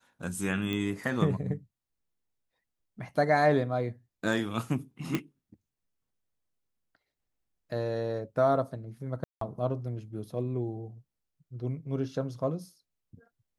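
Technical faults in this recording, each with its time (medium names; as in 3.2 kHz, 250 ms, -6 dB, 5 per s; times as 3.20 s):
0.73 s: pop -20 dBFS
5.15 s: pop -15 dBFS
9.24–9.41 s: dropout 173 ms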